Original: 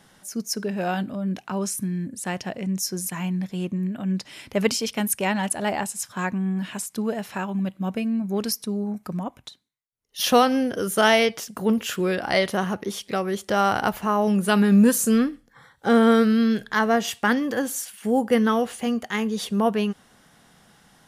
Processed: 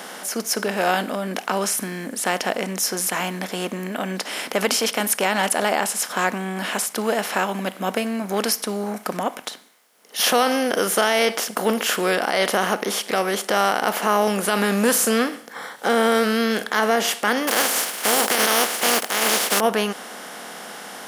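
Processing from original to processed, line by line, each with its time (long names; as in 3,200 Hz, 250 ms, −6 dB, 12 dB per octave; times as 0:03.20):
0:17.47–0:19.59: compressing power law on the bin magnitudes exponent 0.3
whole clip: compressor on every frequency bin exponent 0.6; high-pass filter 350 Hz 12 dB per octave; boost into a limiter +7.5 dB; level −6 dB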